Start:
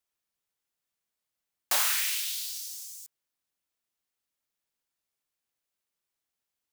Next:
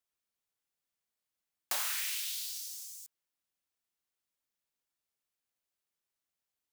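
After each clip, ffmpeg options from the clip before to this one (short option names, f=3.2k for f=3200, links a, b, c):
-af "acompressor=threshold=-29dB:ratio=2.5,volume=-3.5dB"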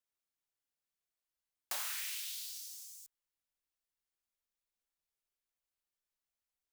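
-af "asubboost=boost=5:cutoff=61,volume=-5dB"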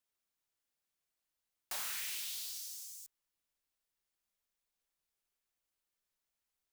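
-af "asoftclip=type=tanh:threshold=-38dB,volume=3dB"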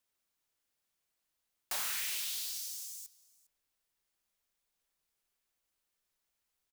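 -af "aecho=1:1:405:0.075,volume=4dB"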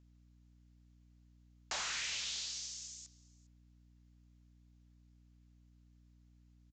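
-af "aeval=exprs='val(0)+0.000631*(sin(2*PI*60*n/s)+sin(2*PI*2*60*n/s)/2+sin(2*PI*3*60*n/s)/3+sin(2*PI*4*60*n/s)/4+sin(2*PI*5*60*n/s)/5)':c=same,aresample=16000,aresample=44100,volume=1dB"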